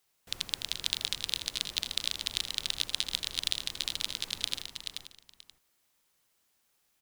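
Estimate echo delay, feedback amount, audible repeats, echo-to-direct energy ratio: 81 ms, repeats not evenly spaced, 7, −4.0 dB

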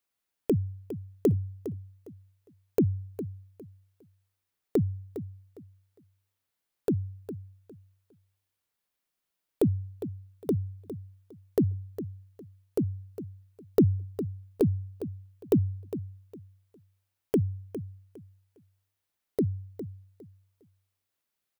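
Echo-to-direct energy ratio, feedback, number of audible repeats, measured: −11.5 dB, 24%, 2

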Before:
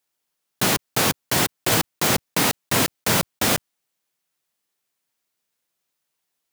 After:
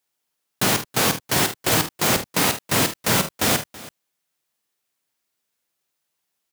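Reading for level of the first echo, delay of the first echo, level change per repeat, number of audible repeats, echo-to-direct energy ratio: −10.0 dB, 49 ms, repeats not evenly spaced, 2, −8.5 dB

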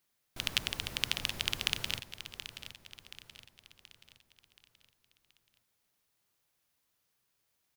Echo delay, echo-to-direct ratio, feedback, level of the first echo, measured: 727 ms, −11.0 dB, 46%, −12.0 dB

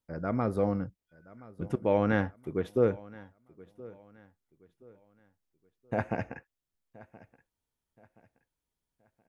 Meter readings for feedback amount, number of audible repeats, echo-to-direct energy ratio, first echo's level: 35%, 2, −20.5 dB, −21.0 dB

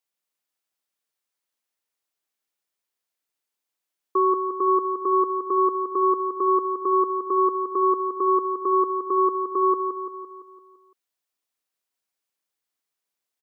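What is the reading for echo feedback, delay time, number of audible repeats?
55%, 170 ms, 6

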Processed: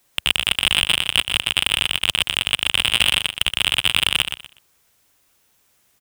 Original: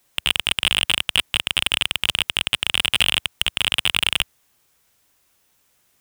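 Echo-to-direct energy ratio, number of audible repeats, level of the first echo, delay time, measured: −8.0 dB, 3, −8.0 dB, 122 ms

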